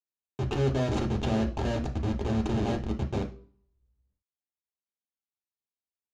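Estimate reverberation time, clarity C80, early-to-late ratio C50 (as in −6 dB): non-exponential decay, 18.0 dB, 12.5 dB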